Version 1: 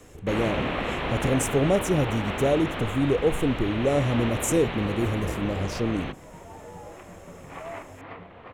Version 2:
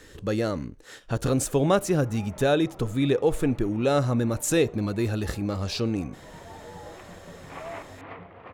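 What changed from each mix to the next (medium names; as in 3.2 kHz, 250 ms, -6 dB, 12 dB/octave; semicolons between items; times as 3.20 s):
speech: add high-order bell 2.1 kHz +13.5 dB 2.5 oct; first sound: muted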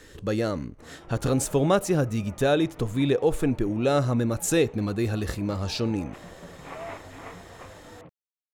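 background: entry -0.85 s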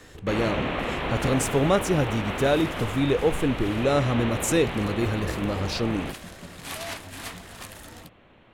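first sound: unmuted; second sound: remove cabinet simulation 100–2000 Hz, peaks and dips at 220 Hz -8 dB, 480 Hz +7 dB, 1.6 kHz -8 dB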